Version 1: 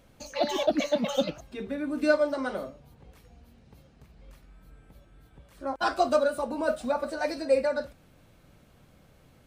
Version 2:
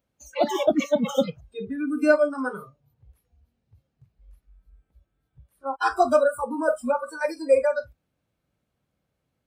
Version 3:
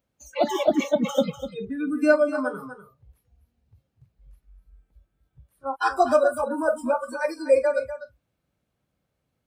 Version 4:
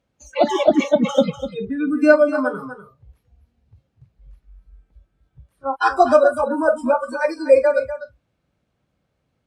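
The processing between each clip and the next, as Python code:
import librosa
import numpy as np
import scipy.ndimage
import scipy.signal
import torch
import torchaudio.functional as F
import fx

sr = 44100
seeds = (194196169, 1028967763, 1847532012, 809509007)

y1 = fx.noise_reduce_blind(x, sr, reduce_db=24)
y1 = scipy.signal.sosfilt(scipy.signal.butter(2, 47.0, 'highpass', fs=sr, output='sos'), y1)
y1 = fx.dynamic_eq(y1, sr, hz=4100.0, q=1.3, threshold_db=-51.0, ratio=4.0, max_db=-7)
y1 = F.gain(torch.from_numpy(y1), 5.0).numpy()
y2 = y1 + 10.0 ** (-11.5 / 20.0) * np.pad(y1, (int(247 * sr / 1000.0), 0))[:len(y1)]
y3 = fx.air_absorb(y2, sr, metres=60.0)
y3 = F.gain(torch.from_numpy(y3), 6.0).numpy()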